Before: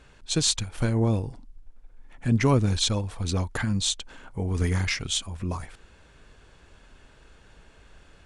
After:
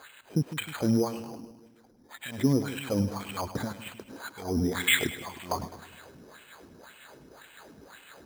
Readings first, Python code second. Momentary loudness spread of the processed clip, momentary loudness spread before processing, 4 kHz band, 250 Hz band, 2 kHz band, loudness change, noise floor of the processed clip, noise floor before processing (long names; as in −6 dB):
18 LU, 11 LU, −6.0 dB, −1.0 dB, +2.5 dB, −3.5 dB, −58 dBFS, −55 dBFS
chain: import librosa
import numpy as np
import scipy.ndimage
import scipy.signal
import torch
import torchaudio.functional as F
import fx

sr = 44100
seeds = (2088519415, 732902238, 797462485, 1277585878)

p1 = scipy.signal.sosfilt(scipy.signal.butter(2, 58.0, 'highpass', fs=sr, output='sos'), x)
p2 = fx.over_compress(p1, sr, threshold_db=-28.0, ratio=-0.5)
p3 = p1 + F.gain(torch.from_numpy(p2), 2.5).numpy()
p4 = 10.0 ** (-14.5 / 20.0) * np.tanh(p3 / 10.0 ** (-14.5 / 20.0))
p5 = fx.wah_lfo(p4, sr, hz=1.9, low_hz=210.0, high_hz=3000.0, q=2.4)
p6 = p5 + fx.echo_split(p5, sr, split_hz=510.0, low_ms=154, high_ms=103, feedback_pct=52, wet_db=-13, dry=0)
p7 = np.repeat(scipy.signal.resample_poly(p6, 1, 8), 8)[:len(p6)]
y = F.gain(torch.from_numpy(p7), 5.0).numpy()